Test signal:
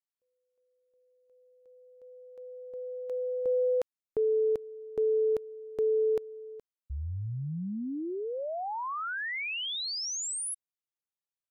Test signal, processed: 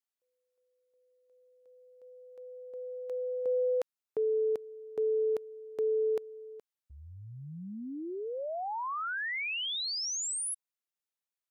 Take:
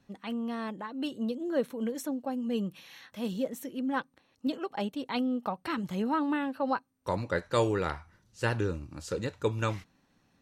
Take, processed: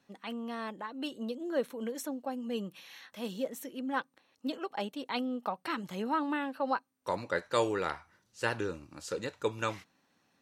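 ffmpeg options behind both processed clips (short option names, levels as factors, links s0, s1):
-af "highpass=f=390:p=1"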